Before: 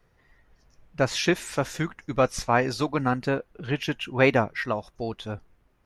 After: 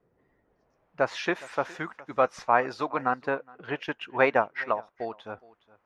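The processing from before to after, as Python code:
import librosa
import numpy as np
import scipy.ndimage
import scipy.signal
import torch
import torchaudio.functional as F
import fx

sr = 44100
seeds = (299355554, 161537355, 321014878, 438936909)

y = fx.filter_sweep_bandpass(x, sr, from_hz=340.0, to_hz=1000.0, start_s=0.38, end_s=1.06, q=0.95)
y = y + 10.0 ** (-21.0 / 20.0) * np.pad(y, (int(415 * sr / 1000.0), 0))[:len(y)]
y = fx.transient(y, sr, attack_db=2, sustain_db=-5, at=(3.13, 5.24), fade=0.02)
y = y * 10.0 ** (2.0 / 20.0)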